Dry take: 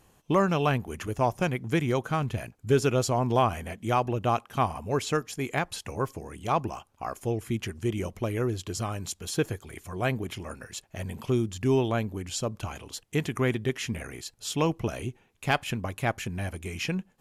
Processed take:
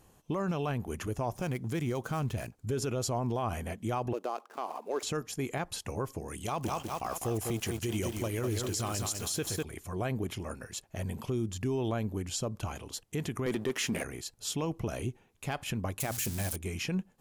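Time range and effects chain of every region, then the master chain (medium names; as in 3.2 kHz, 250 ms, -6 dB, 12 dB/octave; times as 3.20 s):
1.36–2.66 s: dead-time distortion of 0.052 ms + peaking EQ 7.1 kHz +3 dB 1.8 oct
4.13–5.03 s: median filter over 15 samples + high-pass 330 Hz 24 dB/octave
6.28–9.63 s: treble shelf 2.1 kHz +10 dB + bit-crushed delay 200 ms, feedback 55%, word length 7-bit, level -6 dB
13.46–14.04 s: high-pass 220 Hz + waveshaping leveller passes 2
16.00–16.56 s: zero-crossing glitches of -26.5 dBFS + peaking EQ 7.5 kHz +5.5 dB 2.3 oct + hum notches 60/120/180/240/300 Hz
whole clip: peaking EQ 2.3 kHz -4 dB 1.9 oct; peak limiter -23.5 dBFS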